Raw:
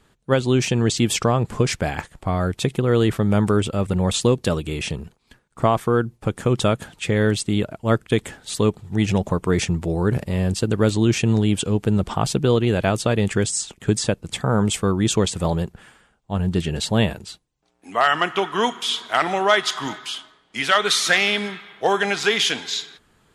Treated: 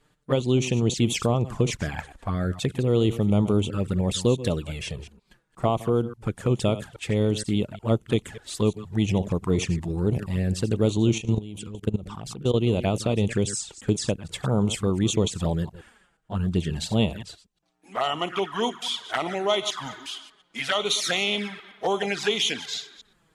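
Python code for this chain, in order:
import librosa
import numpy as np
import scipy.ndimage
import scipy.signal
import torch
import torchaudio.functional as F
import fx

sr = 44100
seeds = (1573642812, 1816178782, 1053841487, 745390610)

y = fx.reverse_delay(x, sr, ms=118, wet_db=-13.5)
y = fx.env_flanger(y, sr, rest_ms=6.8, full_db=-15.5)
y = fx.level_steps(y, sr, step_db=17, at=(11.18, 12.54))
y = F.gain(torch.from_numpy(y), -3.0).numpy()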